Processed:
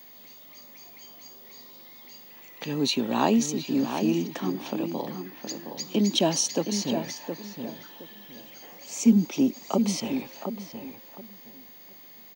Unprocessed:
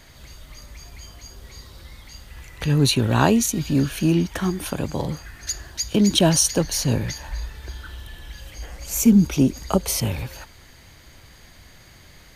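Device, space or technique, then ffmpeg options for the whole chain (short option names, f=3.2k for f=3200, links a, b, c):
old television with a line whistle: -filter_complex "[0:a]asettb=1/sr,asplit=3[a][b][c];[a]atrim=end=4.404[d];[b]atrim=start=4.4:end=5.88,asetpts=PTS-STARTPTS,afade=t=in:d=0.004:c=qsin,afade=t=out:st=1.476:d=0.004:c=qsin,lowpass=6k[e];[c]atrim=start=5.876[f];[d][e]acrossfade=d=0.004:c1=hsin:c2=qsin[g];[g][f]acrossfade=d=0.004:c1=qsin:c2=hsin,highpass=f=210:w=0.5412,highpass=f=210:w=1.3066,equalizer=f=230:t=q:w=4:g=4,equalizer=f=830:t=q:w=4:g=3,equalizer=f=1.5k:t=q:w=4:g=-9,lowpass=f=7k:w=0.5412,lowpass=f=7k:w=1.3066,aeval=exprs='val(0)+0.00794*sin(2*PI*15625*n/s)':c=same,asplit=2[h][i];[i]adelay=717,lowpass=f=1.8k:p=1,volume=-7dB,asplit=2[j][k];[k]adelay=717,lowpass=f=1.8k:p=1,volume=0.24,asplit=2[l][m];[m]adelay=717,lowpass=f=1.8k:p=1,volume=0.24[n];[h][j][l][n]amix=inputs=4:normalize=0,volume=-5dB"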